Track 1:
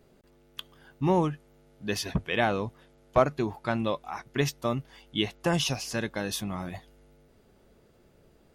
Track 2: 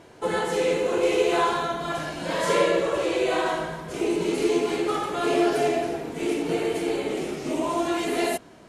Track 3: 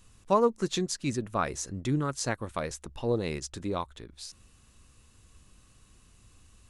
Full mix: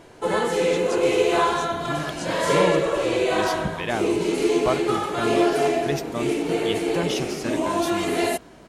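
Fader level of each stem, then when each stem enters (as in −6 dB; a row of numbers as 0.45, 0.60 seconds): −1.5, +2.0, −5.5 decibels; 1.50, 0.00, 0.00 seconds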